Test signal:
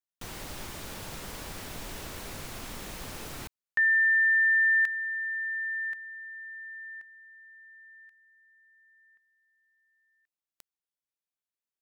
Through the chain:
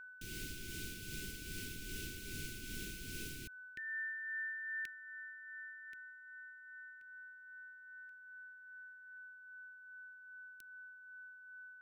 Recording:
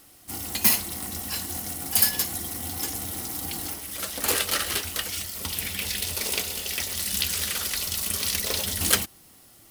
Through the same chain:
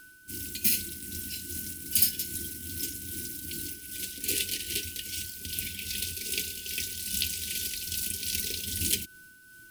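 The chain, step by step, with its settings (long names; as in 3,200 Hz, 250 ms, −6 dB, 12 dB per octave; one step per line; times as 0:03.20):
elliptic band-stop filter 380–2,400 Hz, stop band 70 dB
steady tone 1,500 Hz −47 dBFS
amplitude tremolo 2.5 Hz, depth 41%
level −2.5 dB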